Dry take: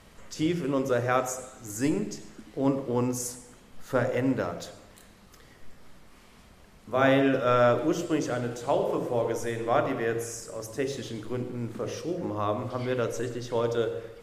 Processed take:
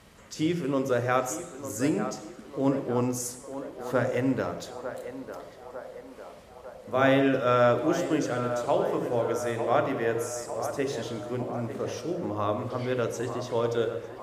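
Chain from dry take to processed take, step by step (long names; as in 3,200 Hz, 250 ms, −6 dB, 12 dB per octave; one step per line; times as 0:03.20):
high-pass filter 50 Hz
feedback echo with a band-pass in the loop 901 ms, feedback 70%, band-pass 770 Hz, level −8.5 dB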